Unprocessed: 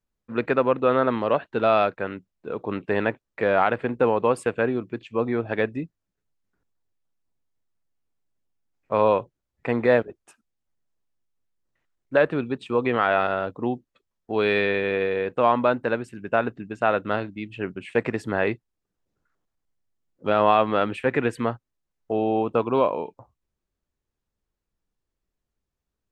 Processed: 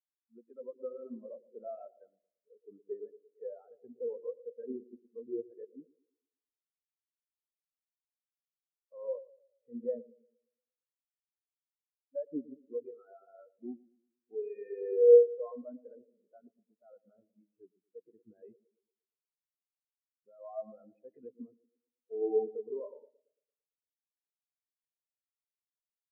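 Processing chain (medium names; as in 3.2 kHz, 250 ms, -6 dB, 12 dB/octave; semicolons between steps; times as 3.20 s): treble shelf 2.4 kHz +4.5 dB; peak limiter -15 dBFS, peak gain reduction 10 dB; tape echo 115 ms, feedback 89%, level -4.5 dB, low-pass 1.3 kHz; spectral contrast expander 4:1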